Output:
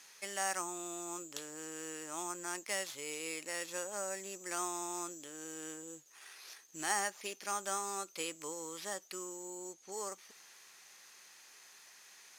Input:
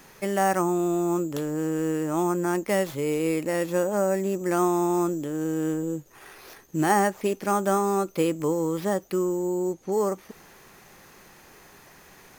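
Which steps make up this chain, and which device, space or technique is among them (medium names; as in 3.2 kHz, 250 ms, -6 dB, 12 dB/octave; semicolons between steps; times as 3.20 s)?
7.00–7.61 s: band-stop 7.9 kHz, Q 7.7; piezo pickup straight into a mixer (low-pass 6.4 kHz 12 dB/octave; differentiator); trim +4 dB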